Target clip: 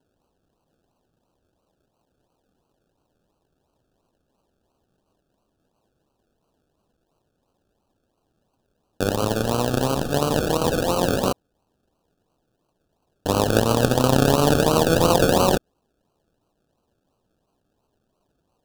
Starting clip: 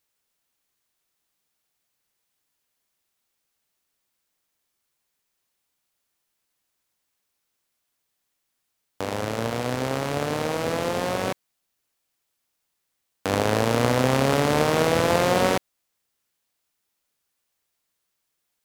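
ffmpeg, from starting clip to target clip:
-filter_complex "[0:a]asplit=2[s0][s1];[s1]alimiter=limit=0.168:level=0:latency=1,volume=1[s2];[s0][s2]amix=inputs=2:normalize=0,acrusher=samples=35:mix=1:aa=0.000001:lfo=1:lforange=21:lforate=2.9,asuperstop=centerf=2100:order=4:qfactor=2.1"

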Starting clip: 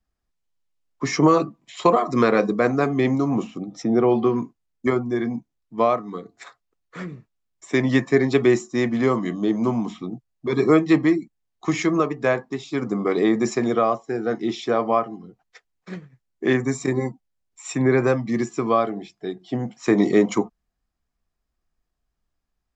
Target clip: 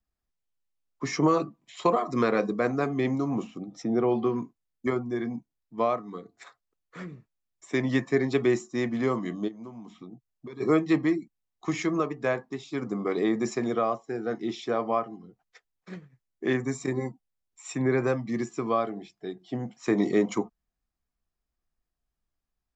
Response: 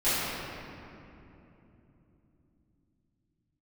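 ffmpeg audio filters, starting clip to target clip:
-filter_complex "[0:a]asplit=3[s0][s1][s2];[s0]afade=t=out:st=9.47:d=0.02[s3];[s1]acompressor=threshold=0.02:ratio=6,afade=t=in:st=9.47:d=0.02,afade=t=out:st=10.6:d=0.02[s4];[s2]afade=t=in:st=10.6:d=0.02[s5];[s3][s4][s5]amix=inputs=3:normalize=0,volume=0.473"

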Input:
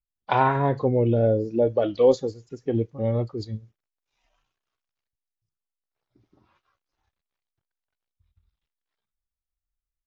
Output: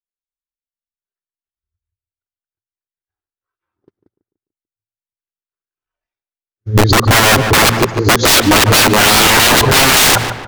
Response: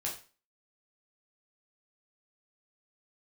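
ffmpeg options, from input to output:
-filter_complex "[0:a]areverse,bandreject=f=60:t=h:w=6,bandreject=f=120:t=h:w=6,bandreject=f=180:t=h:w=6,bandreject=f=240:t=h:w=6,agate=range=0.00631:threshold=0.00178:ratio=16:detection=peak,equalizer=f=100:t=o:w=0.67:g=8,equalizer=f=400:t=o:w=0.67:g=11,equalizer=f=1600:t=o:w=0.67:g=10,dynaudnorm=f=110:g=5:m=1.5,aeval=exprs='(mod(7.5*val(0)+1,2)-1)/7.5':c=same,asplit=2[s0][s1];[s1]adelay=141,lowpass=f=2700:p=1,volume=0.2,asplit=2[s2][s3];[s3]adelay=141,lowpass=f=2700:p=1,volume=0.42,asplit=2[s4][s5];[s5]adelay=141,lowpass=f=2700:p=1,volume=0.42,asplit=2[s6][s7];[s7]adelay=141,lowpass=f=2700:p=1,volume=0.42[s8];[s0][s2][s4][s6][s8]amix=inputs=5:normalize=0,asetrate=42336,aresample=44100,alimiter=level_in=11.9:limit=0.891:release=50:level=0:latency=1,volume=0.891"

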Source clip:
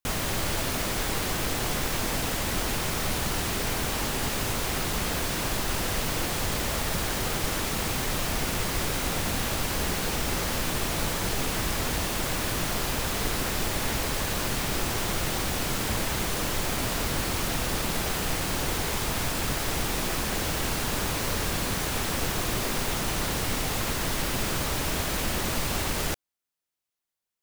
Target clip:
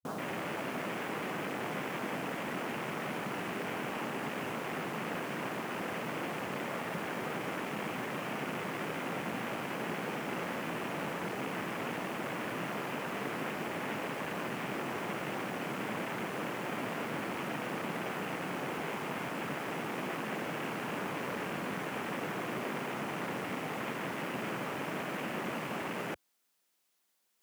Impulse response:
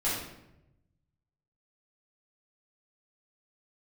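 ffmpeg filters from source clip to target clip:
-af "highpass=f=160:w=0.5412,highpass=f=160:w=1.3066,afwtdn=0.0224,areverse,acompressor=mode=upward:threshold=0.00447:ratio=2.5,areverse,volume=0.596"

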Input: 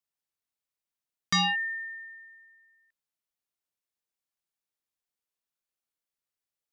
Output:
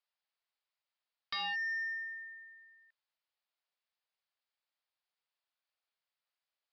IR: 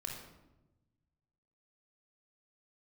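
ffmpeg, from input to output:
-af "highpass=f=550:w=0.5412,highpass=f=550:w=1.3066,acompressor=threshold=0.0224:ratio=10,aresample=11025,asoftclip=type=tanh:threshold=0.0178,aresample=44100,volume=1.41"

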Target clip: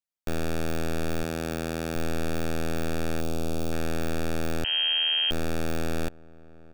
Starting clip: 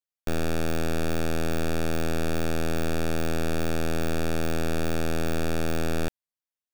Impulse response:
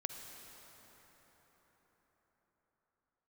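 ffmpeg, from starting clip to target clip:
-filter_complex "[0:a]asettb=1/sr,asplit=3[s0][s1][s2];[s0]atrim=end=1.234[s3];[s1]atrim=start=1.23:end=1.96,asetpts=PTS-STARTPTS,afade=t=in:d=0.004:c=qsin,afade=t=out:st=0.726:d=0.004:c=qsin,highpass=91[s4];[s2]atrim=start=1.956[s5];[s3][s4]acrossfade=d=0.004:c1=hsin:c2=qsin[s6];[s6][s5]acrossfade=d=0.004:c1=qsin:c2=hsin,asettb=1/sr,asplit=3[s7][s8][s9];[s7]atrim=end=3.214[s10];[s8]atrim=start=3.21:end=3.72,asetpts=PTS-STARTPTS,afade=t=in:d=0.004:c=qsin,afade=t=out:st=0.506:d=0.004:c=qsin,equalizer=f=1800:t=o:w=0.71:g=-14[s11];[s9]atrim=start=3.716[s12];[s10][s11]acrossfade=d=0.004:c1=hsin:c2=qsin[s13];[s13][s12]acrossfade=d=0.004:c1=qsin:c2=hsin,asplit=2[s14][s15];[s15]adelay=1050,volume=0.0891,highshelf=f=4000:g=-23.6[s16];[s14][s16]amix=inputs=2:normalize=0,asettb=1/sr,asplit=3[s17][s18][s19];[s17]atrim=end=4.644[s20];[s18]atrim=start=4.64:end=5.31,asetpts=PTS-STARTPTS,afade=t=in:d=0.004:c=qsin,afade=t=out:st=0.666:d=0.004:c=qsin,lowpass=f=2700:t=q:w=0.5098,lowpass=f=2700:t=q:w=0.6013,lowpass=f=2700:t=q:w=0.9,lowpass=f=2700:t=q:w=2.563,afreqshift=-3200[s21];[s19]atrim=start=5.306[s22];[s20][s21]acrossfade=d=0.004:c1=hsin:c2=qsin[s23];[s23][s22]acrossfade=d=0.004:c1=qsin:c2=hsin,volume=0.794"

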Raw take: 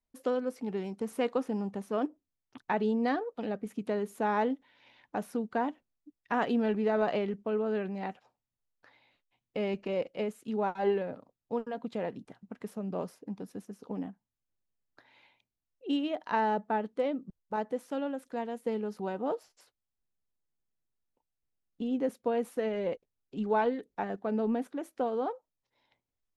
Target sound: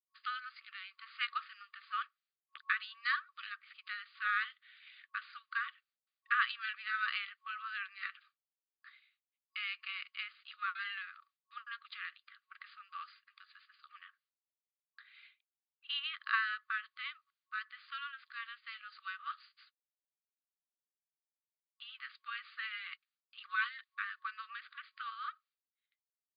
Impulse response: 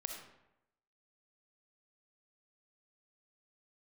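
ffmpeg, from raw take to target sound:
-af "agate=range=0.0224:threshold=0.00112:ratio=3:detection=peak,afftfilt=real='re*between(b*sr/4096,1100,4900)':imag='im*between(b*sr/4096,1100,4900)':win_size=4096:overlap=0.75,volume=2"

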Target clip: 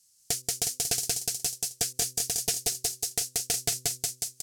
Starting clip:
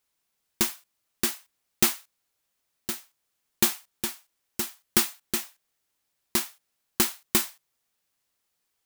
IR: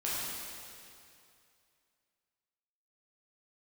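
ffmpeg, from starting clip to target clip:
-filter_complex "[0:a]asplit=2[s0][s1];[s1]aecho=0:1:364|728|1092|1456|1820|2184:0.631|0.315|0.158|0.0789|0.0394|0.0197[s2];[s0][s2]amix=inputs=2:normalize=0,asetrate=88200,aresample=44100,asplit=2[s3][s4];[s4]alimiter=limit=0.2:level=0:latency=1:release=154,volume=0.891[s5];[s3][s5]amix=inputs=2:normalize=0,aexciter=amount=9.9:drive=5.2:freq=5300,acrossover=split=3000[s6][s7];[s7]acompressor=threshold=0.224:ratio=4:attack=1:release=60[s8];[s6][s8]amix=inputs=2:normalize=0,lowpass=7300,bandreject=f=126.3:t=h:w=4,bandreject=f=252.6:t=h:w=4,bandreject=f=378.9:t=h:w=4,bandreject=f=505.2:t=h:w=4,asoftclip=type=tanh:threshold=0.2,equalizer=f=125:t=o:w=1:g=10,equalizer=f=250:t=o:w=1:g=-4,equalizer=f=500:t=o:w=1:g=-9,equalizer=f=1000:t=o:w=1:g=-10,equalizer=f=2000:t=o:w=1:g=-6,equalizer=f=4000:t=o:w=1:g=6"

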